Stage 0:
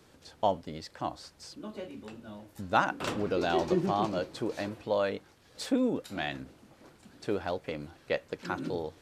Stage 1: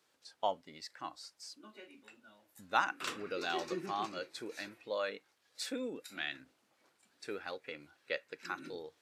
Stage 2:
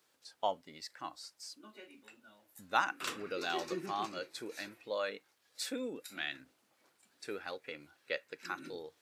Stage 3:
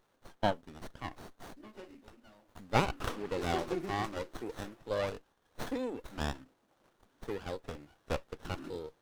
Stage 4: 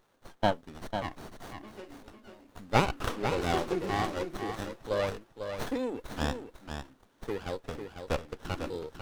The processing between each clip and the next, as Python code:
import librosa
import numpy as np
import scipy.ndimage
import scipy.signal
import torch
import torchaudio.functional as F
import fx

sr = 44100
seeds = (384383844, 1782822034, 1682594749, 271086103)

y1 = fx.highpass(x, sr, hz=1100.0, slope=6)
y1 = fx.noise_reduce_blind(y1, sr, reduce_db=9)
y1 = y1 * 10.0 ** (-1.0 / 20.0)
y2 = fx.high_shelf(y1, sr, hz=11000.0, db=8.5)
y3 = fx.running_max(y2, sr, window=17)
y3 = y3 * 10.0 ** (4.0 / 20.0)
y4 = y3 + 10.0 ** (-7.5 / 20.0) * np.pad(y3, (int(498 * sr / 1000.0), 0))[:len(y3)]
y4 = y4 * 10.0 ** (3.5 / 20.0)